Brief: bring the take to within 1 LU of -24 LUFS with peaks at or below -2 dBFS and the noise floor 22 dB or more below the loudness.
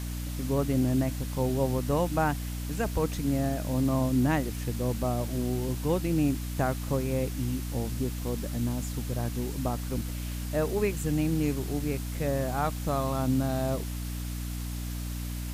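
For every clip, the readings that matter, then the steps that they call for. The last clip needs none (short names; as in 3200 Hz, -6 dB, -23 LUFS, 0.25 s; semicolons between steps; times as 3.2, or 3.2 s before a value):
hum 60 Hz; harmonics up to 300 Hz; hum level -32 dBFS; noise floor -35 dBFS; noise floor target -52 dBFS; loudness -30.0 LUFS; peak -12.5 dBFS; loudness target -24.0 LUFS
-> de-hum 60 Hz, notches 5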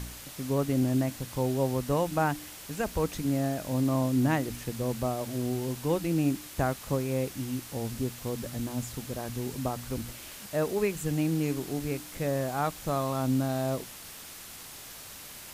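hum none; noise floor -45 dBFS; noise floor target -53 dBFS
-> denoiser 8 dB, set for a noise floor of -45 dBFS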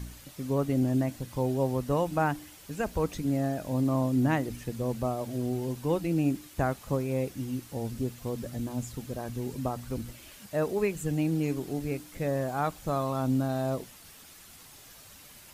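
noise floor -52 dBFS; noise floor target -53 dBFS
-> denoiser 6 dB, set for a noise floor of -52 dBFS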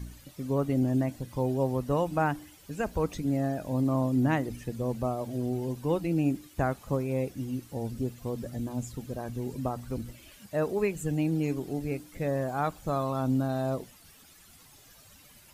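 noise floor -56 dBFS; loudness -30.5 LUFS; peak -13.0 dBFS; loudness target -24.0 LUFS
-> gain +6.5 dB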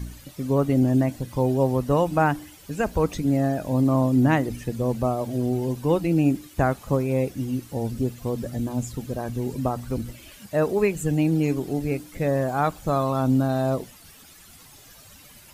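loudness -24.0 LUFS; peak -6.5 dBFS; noise floor -49 dBFS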